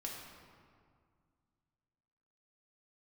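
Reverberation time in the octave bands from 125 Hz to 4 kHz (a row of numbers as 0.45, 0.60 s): 2.8, 2.6, 2.0, 2.0, 1.6, 1.2 s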